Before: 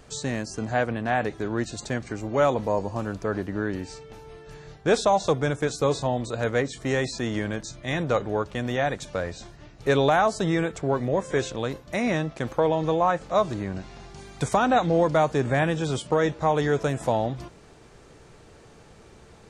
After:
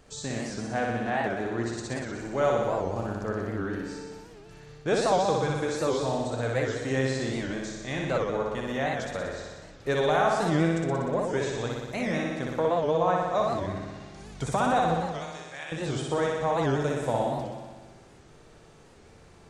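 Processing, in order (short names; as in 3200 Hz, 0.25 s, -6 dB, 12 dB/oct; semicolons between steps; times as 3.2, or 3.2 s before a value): 14.94–15.72 band-pass 5100 Hz, Q 0.8; flutter echo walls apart 10.4 m, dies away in 1.4 s; record warp 78 rpm, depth 160 cents; gain -6 dB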